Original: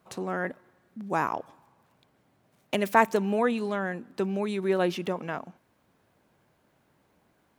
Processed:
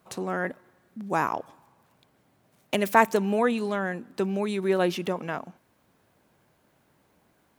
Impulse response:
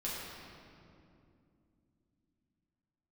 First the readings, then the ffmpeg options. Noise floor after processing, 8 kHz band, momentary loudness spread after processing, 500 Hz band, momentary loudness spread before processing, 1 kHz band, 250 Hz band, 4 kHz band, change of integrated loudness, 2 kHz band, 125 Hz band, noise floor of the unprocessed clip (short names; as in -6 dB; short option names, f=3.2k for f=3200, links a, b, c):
-67 dBFS, +4.5 dB, 13 LU, +1.5 dB, 13 LU, +1.5 dB, +1.5 dB, +2.5 dB, +1.5 dB, +2.0 dB, +1.5 dB, -69 dBFS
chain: -af "highshelf=f=6.1k:g=4.5,volume=1.5dB"